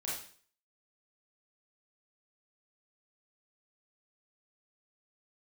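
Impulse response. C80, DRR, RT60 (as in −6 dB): 7.0 dB, −7.0 dB, 0.50 s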